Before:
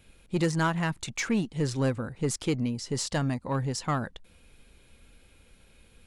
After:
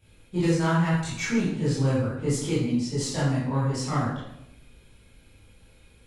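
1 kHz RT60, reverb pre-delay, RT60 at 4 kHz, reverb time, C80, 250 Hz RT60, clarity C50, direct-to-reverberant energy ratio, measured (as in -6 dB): 0.75 s, 15 ms, 0.65 s, 0.85 s, 4.0 dB, 1.0 s, 0.0 dB, -11.0 dB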